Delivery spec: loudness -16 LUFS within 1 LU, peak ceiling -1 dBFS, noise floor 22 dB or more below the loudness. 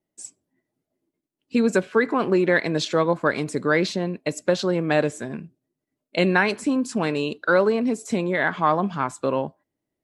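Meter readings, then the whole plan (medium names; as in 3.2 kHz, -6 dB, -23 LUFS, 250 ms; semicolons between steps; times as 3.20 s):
loudness -22.5 LUFS; peak level -4.5 dBFS; loudness target -16.0 LUFS
-> trim +6.5 dB; peak limiter -1 dBFS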